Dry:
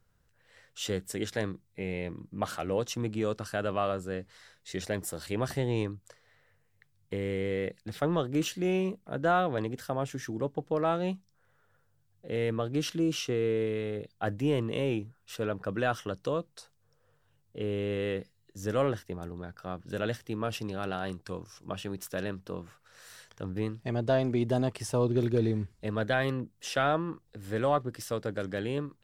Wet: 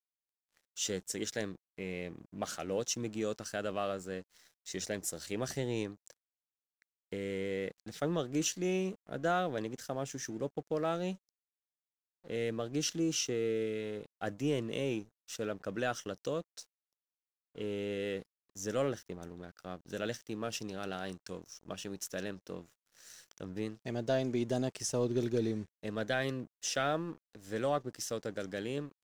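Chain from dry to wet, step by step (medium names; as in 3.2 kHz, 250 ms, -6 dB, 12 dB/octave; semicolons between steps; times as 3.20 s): fifteen-band graphic EQ 100 Hz -8 dB, 1 kHz -6 dB, 6.3 kHz +11 dB; crossover distortion -53.5 dBFS; trim -3.5 dB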